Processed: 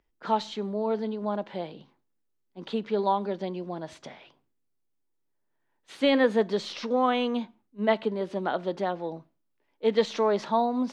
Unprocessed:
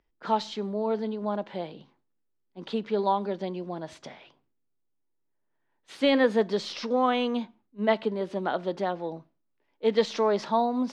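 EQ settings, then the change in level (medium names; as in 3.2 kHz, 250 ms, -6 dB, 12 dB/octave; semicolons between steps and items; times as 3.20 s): dynamic bell 5.1 kHz, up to -5 dB, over -57 dBFS, Q 4.9; 0.0 dB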